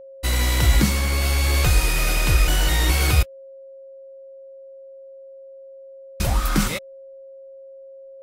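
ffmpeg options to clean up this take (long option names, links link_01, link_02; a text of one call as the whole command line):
ffmpeg -i in.wav -af "bandreject=frequency=540:width=30" out.wav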